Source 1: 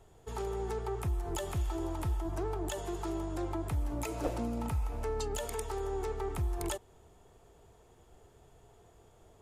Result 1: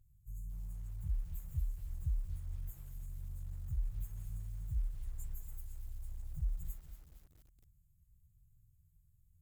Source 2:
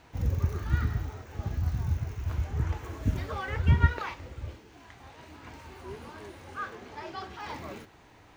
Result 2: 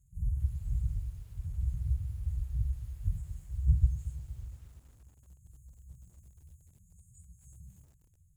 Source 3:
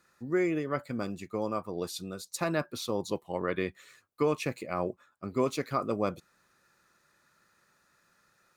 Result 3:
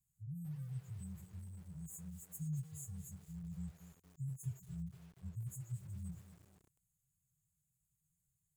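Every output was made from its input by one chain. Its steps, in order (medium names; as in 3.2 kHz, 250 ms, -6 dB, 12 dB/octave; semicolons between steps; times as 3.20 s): frequency axis rescaled in octaves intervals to 118%; brick-wall FIR band-stop 180–6400 Hz; treble shelf 8.2 kHz -6 dB; bit-crushed delay 233 ms, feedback 55%, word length 9-bit, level -12.5 dB; trim -1 dB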